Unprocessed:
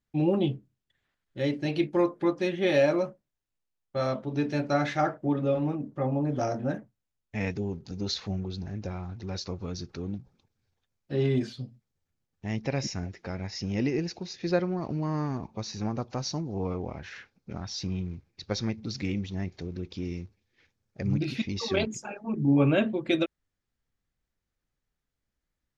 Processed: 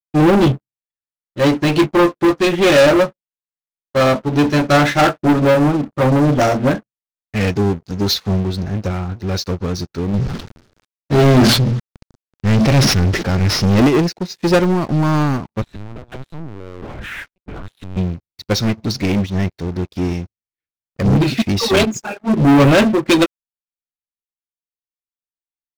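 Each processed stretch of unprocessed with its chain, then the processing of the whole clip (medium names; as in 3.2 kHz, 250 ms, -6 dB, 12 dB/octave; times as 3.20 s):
10.14–13.87 s: CVSD coder 32 kbps + bass shelf 310 Hz +6 dB + decay stretcher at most 39 dB/s
15.62–17.97 s: compression, threshold -43 dBFS + waveshaping leveller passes 3 + LPC vocoder at 8 kHz pitch kept
whole clip: peaking EQ 1.4 kHz +4 dB 0.28 oct; waveshaping leveller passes 5; upward expansion 2.5:1, over -31 dBFS; trim +5.5 dB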